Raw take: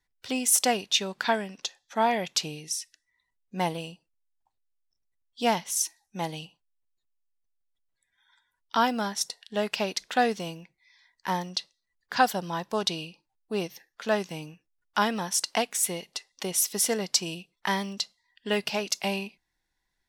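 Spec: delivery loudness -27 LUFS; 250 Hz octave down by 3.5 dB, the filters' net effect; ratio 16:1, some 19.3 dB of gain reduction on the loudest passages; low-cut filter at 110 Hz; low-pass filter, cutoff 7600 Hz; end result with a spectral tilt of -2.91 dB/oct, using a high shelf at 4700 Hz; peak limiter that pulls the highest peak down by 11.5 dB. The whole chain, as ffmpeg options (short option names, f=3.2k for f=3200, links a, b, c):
-af "highpass=110,lowpass=7.6k,equalizer=f=250:t=o:g=-4,highshelf=f=4.7k:g=-6,acompressor=threshold=-36dB:ratio=16,volume=17dB,alimiter=limit=-13.5dB:level=0:latency=1"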